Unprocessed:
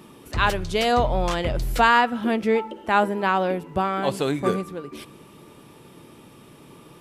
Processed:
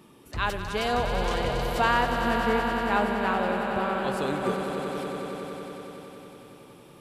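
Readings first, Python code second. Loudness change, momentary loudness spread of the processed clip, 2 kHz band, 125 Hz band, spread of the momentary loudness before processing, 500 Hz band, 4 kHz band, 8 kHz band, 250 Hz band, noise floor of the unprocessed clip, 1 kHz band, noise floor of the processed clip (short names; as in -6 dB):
-4.5 dB, 16 LU, -3.5 dB, -4.0 dB, 11 LU, -3.5 dB, -4.0 dB, -4.0 dB, -3.5 dB, -49 dBFS, -4.0 dB, -51 dBFS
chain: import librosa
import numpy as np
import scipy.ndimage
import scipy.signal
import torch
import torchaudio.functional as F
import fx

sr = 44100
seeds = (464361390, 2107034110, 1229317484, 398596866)

y = fx.echo_swell(x, sr, ms=93, loudest=5, wet_db=-9.5)
y = y * 10.0 ** (-7.0 / 20.0)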